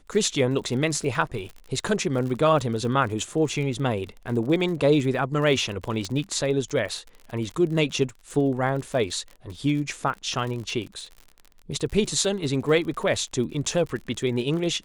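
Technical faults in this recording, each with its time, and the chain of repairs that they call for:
crackle 47/s -33 dBFS
6.05 pop -17 dBFS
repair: de-click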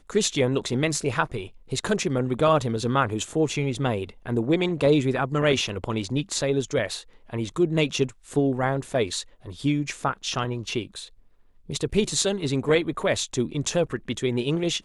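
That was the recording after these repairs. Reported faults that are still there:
none

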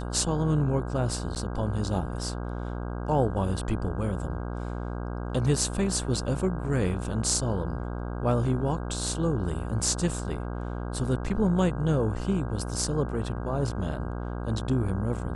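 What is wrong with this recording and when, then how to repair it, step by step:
buzz 60 Hz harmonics 27 -33 dBFS
1.35–1.36 gap 9.2 ms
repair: de-hum 60 Hz, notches 27; interpolate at 1.35, 9.2 ms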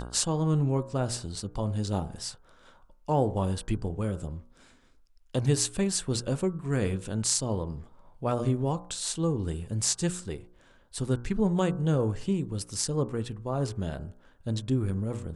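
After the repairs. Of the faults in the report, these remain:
none

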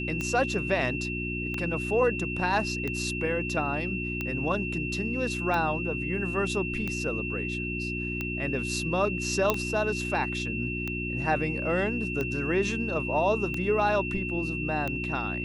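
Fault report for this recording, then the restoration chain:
hum 60 Hz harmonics 6 -34 dBFS
tick 45 rpm -18 dBFS
tone 2700 Hz -33 dBFS
9.5 pop -9 dBFS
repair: de-click; de-hum 60 Hz, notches 6; notch 2700 Hz, Q 30

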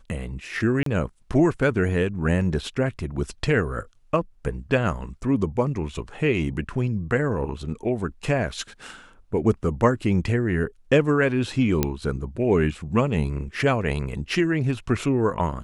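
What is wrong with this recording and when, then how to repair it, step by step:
0.83–0.86 gap 33 ms
11.83 pop -6 dBFS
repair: de-click; interpolate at 0.83, 33 ms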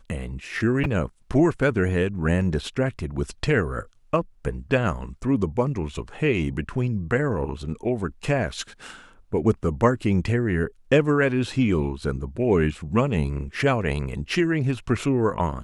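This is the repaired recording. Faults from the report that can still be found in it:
none

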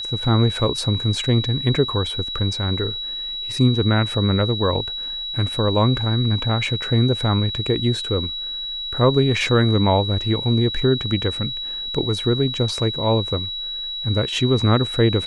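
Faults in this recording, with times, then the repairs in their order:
tone 3900 Hz -26 dBFS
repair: notch 3900 Hz, Q 30

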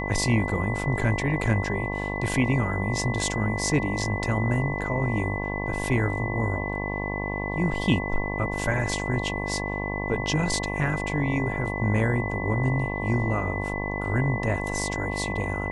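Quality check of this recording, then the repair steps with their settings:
buzz 50 Hz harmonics 22 -31 dBFS
tone 2000 Hz -32 dBFS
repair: notch 2000 Hz, Q 30; de-hum 50 Hz, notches 22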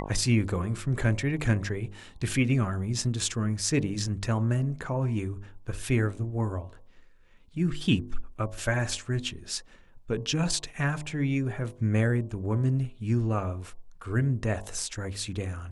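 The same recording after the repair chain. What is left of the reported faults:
none

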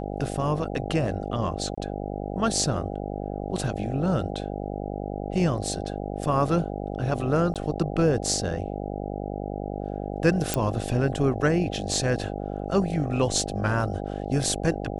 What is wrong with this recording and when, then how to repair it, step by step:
buzz 50 Hz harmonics 16 -32 dBFS
1.75–1.77 gap 25 ms
7.54–7.56 gap 17 ms
10.54 pop -7 dBFS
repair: de-click; de-hum 50 Hz, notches 16; interpolate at 1.75, 25 ms; interpolate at 7.54, 17 ms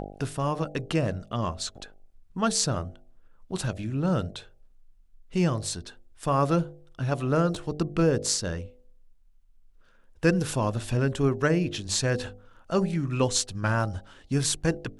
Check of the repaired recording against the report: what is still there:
10.54 pop

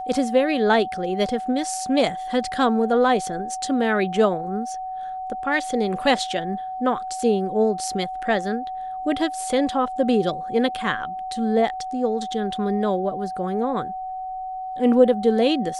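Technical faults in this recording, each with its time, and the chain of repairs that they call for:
tone 750 Hz -28 dBFS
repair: notch 750 Hz, Q 30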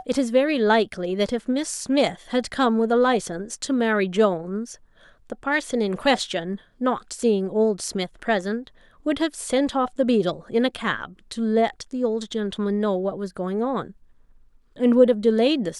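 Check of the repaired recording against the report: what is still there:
none

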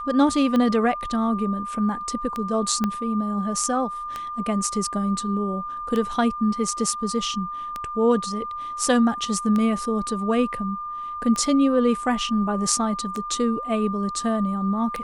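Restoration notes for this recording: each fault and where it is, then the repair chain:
tick 33 1/3 rpm -14 dBFS
tone 1200 Hz -29 dBFS
2.84 pop -11 dBFS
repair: de-click; notch 1200 Hz, Q 30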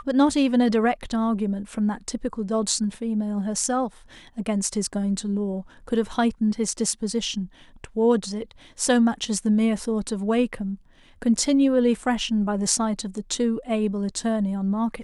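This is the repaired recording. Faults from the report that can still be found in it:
2.84 pop

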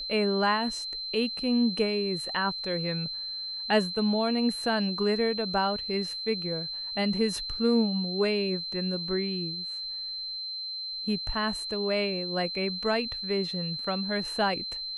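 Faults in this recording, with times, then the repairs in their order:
tone 4100 Hz -33 dBFS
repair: notch 4100 Hz, Q 30

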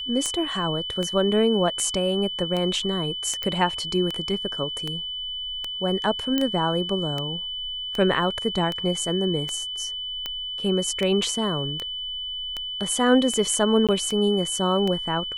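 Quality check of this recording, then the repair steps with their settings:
tick 78 rpm -14 dBFS
tone 3000 Hz -29 dBFS
3.43 pop -14 dBFS
6.38 pop -10 dBFS
13.87–13.89 gap 17 ms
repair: de-click; notch 3000 Hz, Q 30; interpolate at 13.87, 17 ms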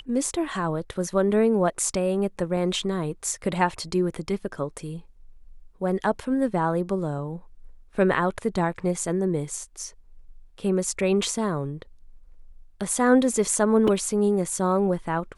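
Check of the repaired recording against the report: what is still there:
none

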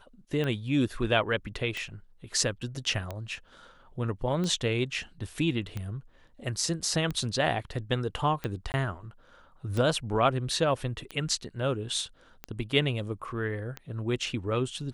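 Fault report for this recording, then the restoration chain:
tick 45 rpm -20 dBFS
8.72–8.74 gap 19 ms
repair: de-click; interpolate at 8.72, 19 ms

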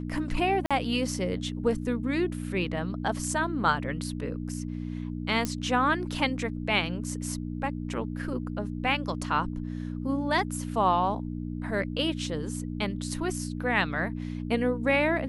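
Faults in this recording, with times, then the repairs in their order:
hum 60 Hz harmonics 5 -34 dBFS
0.66–0.71 gap 46 ms
5.45 pop -14 dBFS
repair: de-click; de-hum 60 Hz, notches 5; interpolate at 0.66, 46 ms

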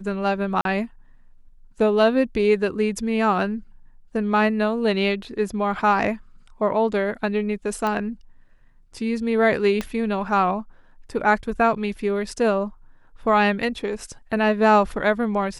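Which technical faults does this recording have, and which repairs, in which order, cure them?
0.61–0.65 gap 42 ms
7.87 pop -13 dBFS
9.81 pop -12 dBFS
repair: de-click; interpolate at 0.61, 42 ms

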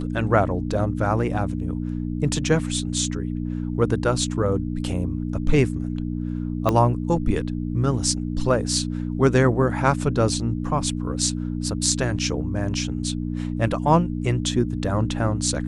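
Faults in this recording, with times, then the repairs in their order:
hum 60 Hz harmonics 5 -27 dBFS
6.69 pop -8 dBFS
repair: de-click; de-hum 60 Hz, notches 5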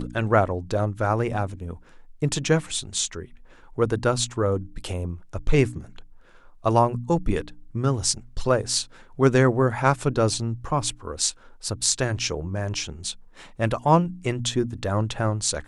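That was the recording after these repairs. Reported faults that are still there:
6.69 pop

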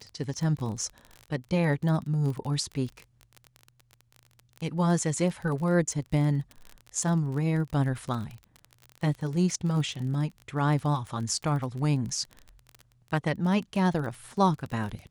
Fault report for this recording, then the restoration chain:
crackle 26/s -33 dBFS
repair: de-click

